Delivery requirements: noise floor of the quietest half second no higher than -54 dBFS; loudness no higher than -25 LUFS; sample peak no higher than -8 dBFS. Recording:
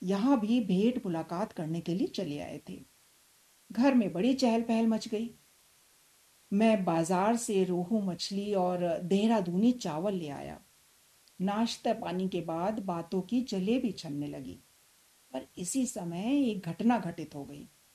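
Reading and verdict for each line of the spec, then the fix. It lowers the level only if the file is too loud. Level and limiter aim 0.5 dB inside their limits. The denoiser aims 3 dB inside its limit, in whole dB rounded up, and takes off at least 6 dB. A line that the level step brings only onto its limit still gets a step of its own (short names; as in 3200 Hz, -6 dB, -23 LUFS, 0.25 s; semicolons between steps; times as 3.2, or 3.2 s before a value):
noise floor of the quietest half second -64 dBFS: OK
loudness -30.5 LUFS: OK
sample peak -15.5 dBFS: OK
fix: none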